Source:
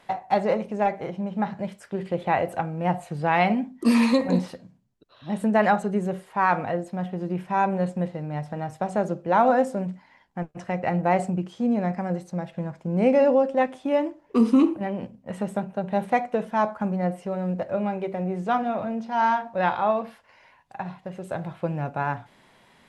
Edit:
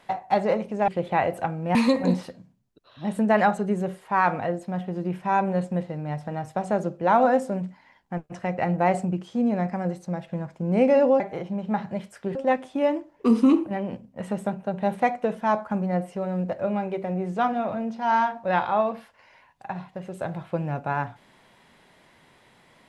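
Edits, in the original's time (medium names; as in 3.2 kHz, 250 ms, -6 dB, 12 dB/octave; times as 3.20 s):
0.88–2.03 s: move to 13.45 s
2.90–4.00 s: delete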